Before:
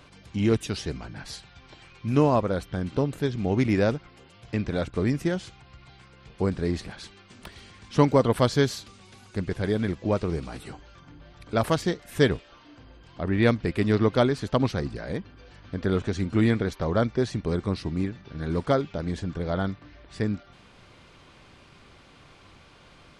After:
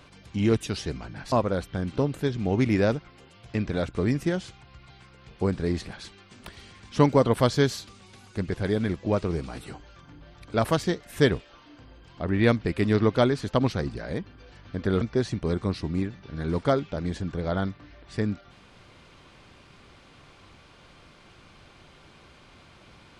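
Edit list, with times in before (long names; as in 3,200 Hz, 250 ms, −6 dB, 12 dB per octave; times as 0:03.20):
0:01.32–0:02.31: remove
0:16.00–0:17.03: remove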